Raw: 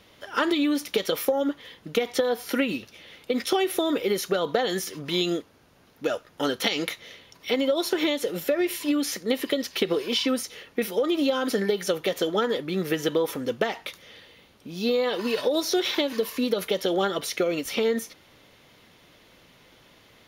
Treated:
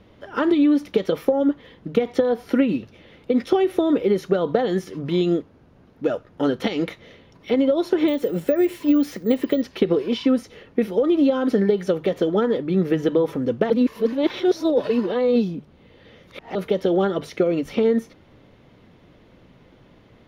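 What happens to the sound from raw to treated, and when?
8.08–9.62 s: careless resampling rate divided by 2×, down none, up zero stuff
13.70–16.55 s: reverse
whole clip: low-pass 1.6 kHz 6 dB/octave; bass shelf 430 Hz +11 dB; hum notches 50/100/150 Hz

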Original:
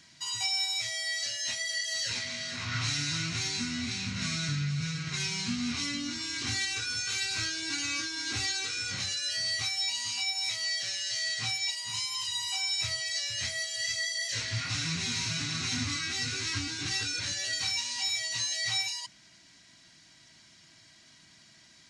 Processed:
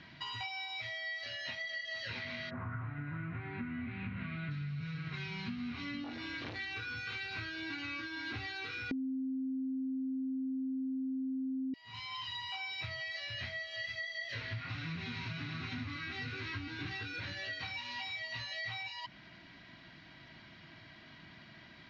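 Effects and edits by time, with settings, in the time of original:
2.49–4.50 s: low-pass 1.3 kHz -> 3.1 kHz 24 dB/octave
6.04–6.63 s: transformer saturation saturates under 1.9 kHz
8.91–11.74 s: bleep 263 Hz -17 dBFS
whole clip: Bessel low-pass 2.3 kHz, order 6; compression, threshold -47 dBFS; trim +8 dB

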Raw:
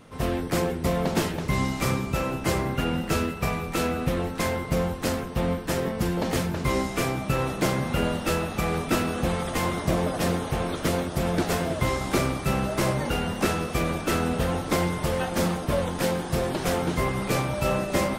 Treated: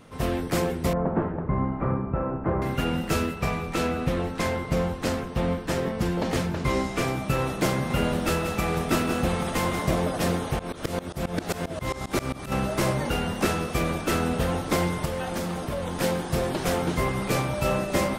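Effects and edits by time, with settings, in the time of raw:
0.93–2.62 s: low-pass 1.4 kHz 24 dB/octave
3.35–7.08 s: treble shelf 11 kHz -11.5 dB
7.72–10.00 s: delay 182 ms -8.5 dB
10.59–12.52 s: tremolo saw up 7.5 Hz, depth 95%
15.05–16.01 s: compression, threshold -25 dBFS

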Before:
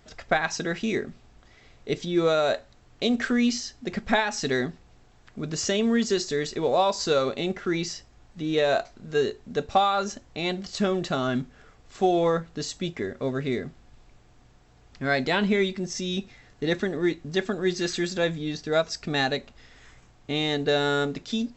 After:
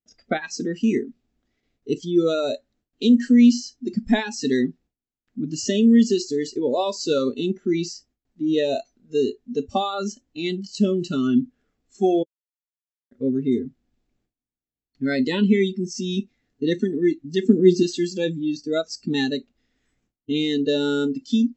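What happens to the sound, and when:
12.23–13.11 s: mute
17.43–17.83 s: peaking EQ 270 Hz +8 dB 2.3 oct
whole clip: graphic EQ 125/250/1000 Hz -3/+11/-6 dB; gate with hold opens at -43 dBFS; spectral noise reduction 20 dB

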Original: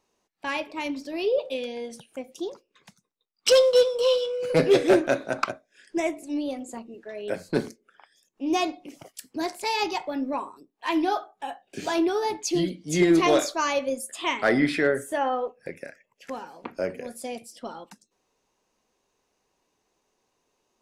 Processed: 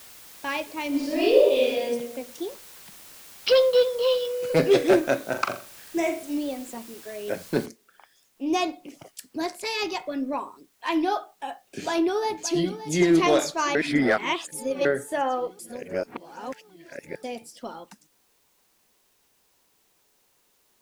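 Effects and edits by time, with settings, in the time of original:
0.88–1.83 s: reverb throw, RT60 1 s, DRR -7 dB
2.43–4.25 s: elliptic low-pass 4.8 kHz, stop band 60 dB
5.29–6.38 s: flutter echo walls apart 7.2 m, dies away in 0.37 s
7.66 s: noise floor step -47 dB -67 dB
9.48–10.31 s: band-stop 860 Hz, Q 5.4
11.80–12.93 s: echo throw 570 ms, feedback 70%, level -12.5 dB
13.75–14.85 s: reverse
15.59–17.23 s: reverse

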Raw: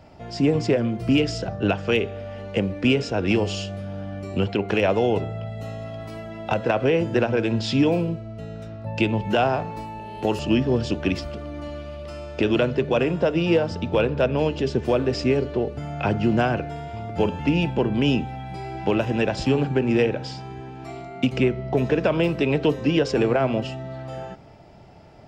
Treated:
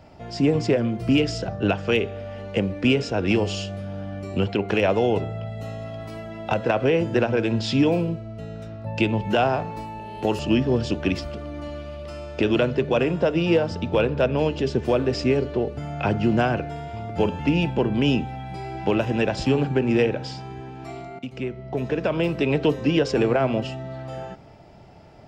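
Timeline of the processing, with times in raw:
21.19–22.54 s: fade in, from -14 dB

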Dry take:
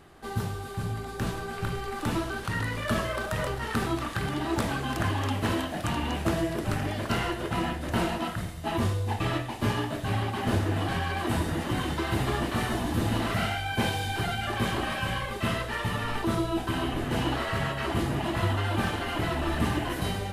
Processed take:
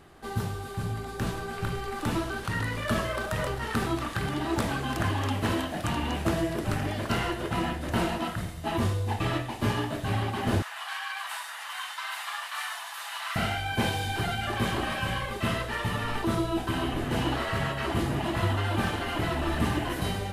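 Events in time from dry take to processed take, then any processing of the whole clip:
10.62–13.36 s: inverse Chebyshev high-pass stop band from 370 Hz, stop band 50 dB

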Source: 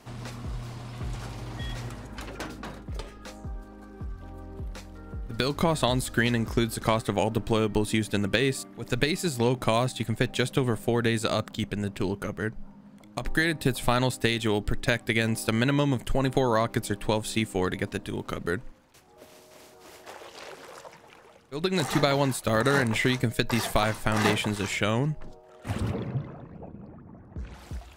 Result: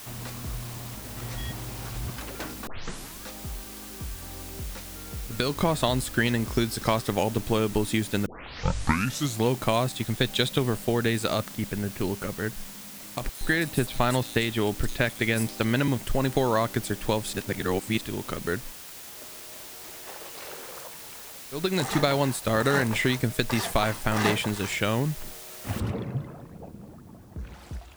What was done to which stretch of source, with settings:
0.95–2.16 s: reverse
2.67 s: tape start 0.57 s
6.54–7.23 s: peaking EQ 5.3 kHz +10 dB 0.28 oct
8.26 s: tape start 1.20 s
10.05–10.58 s: peaking EQ 3.7 kHz +11.5 dB 0.28 oct
11.48–12.00 s: high-order bell 4.8 kHz -12.5 dB
13.29–15.88 s: bands offset in time highs, lows 120 ms, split 4.9 kHz
17.33–18.01 s: reverse
20.45–20.86 s: flutter echo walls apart 8.5 m, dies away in 0.54 s
25.80 s: noise floor step -43 dB -65 dB

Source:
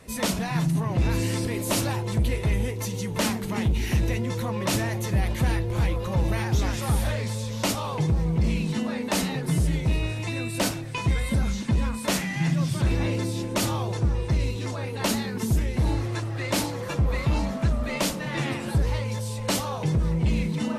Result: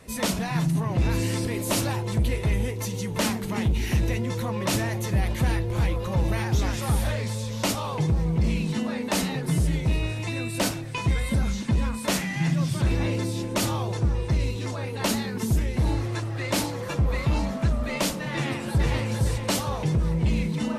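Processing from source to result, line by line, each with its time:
18.33–18.91 s: echo throw 460 ms, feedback 40%, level -3 dB

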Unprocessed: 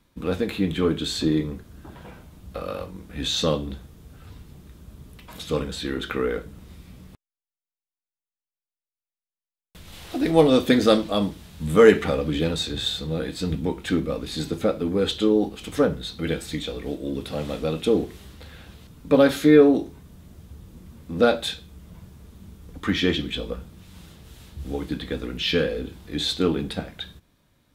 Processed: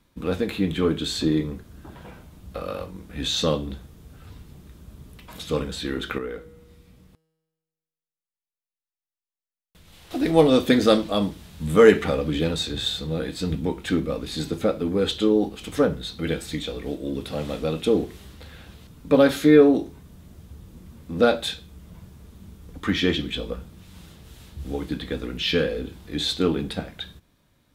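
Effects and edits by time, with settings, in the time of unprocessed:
6.18–10.11 s: feedback comb 160 Hz, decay 1.5 s

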